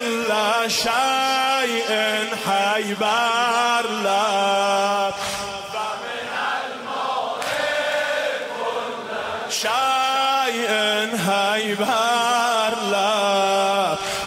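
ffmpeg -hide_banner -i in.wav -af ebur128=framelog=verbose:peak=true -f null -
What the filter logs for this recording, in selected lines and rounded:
Integrated loudness:
  I:         -20.5 LUFS
  Threshold: -30.4 LUFS
Loudness range:
  LRA:         4.7 LU
  Threshold: -40.8 LUFS
  LRA low:   -24.0 LUFS
  LRA high:  -19.3 LUFS
True peak:
  Peak:       -9.5 dBFS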